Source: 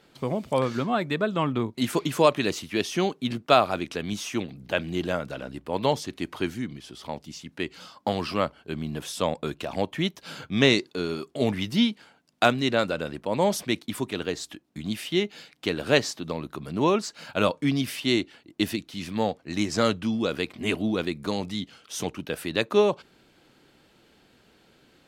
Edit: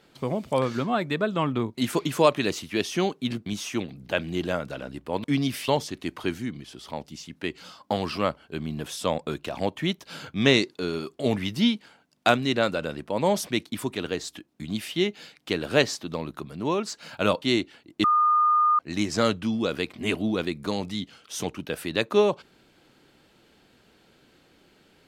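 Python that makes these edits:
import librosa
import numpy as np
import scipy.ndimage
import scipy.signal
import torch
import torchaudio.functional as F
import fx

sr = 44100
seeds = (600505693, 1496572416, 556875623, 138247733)

y = fx.edit(x, sr, fx.cut(start_s=3.46, length_s=0.6),
    fx.clip_gain(start_s=16.61, length_s=0.41, db=-4.0),
    fx.move(start_s=17.58, length_s=0.44, to_s=5.84),
    fx.bleep(start_s=18.64, length_s=0.75, hz=1220.0, db=-17.0), tone=tone)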